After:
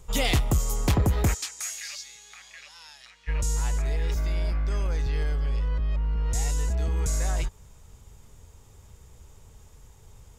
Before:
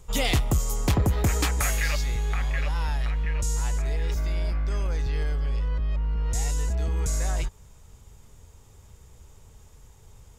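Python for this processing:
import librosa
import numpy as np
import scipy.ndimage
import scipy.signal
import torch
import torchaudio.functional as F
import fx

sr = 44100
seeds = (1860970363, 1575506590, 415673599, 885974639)

y = fx.bandpass_q(x, sr, hz=6000.0, q=1.3, at=(1.33, 3.27), fade=0.02)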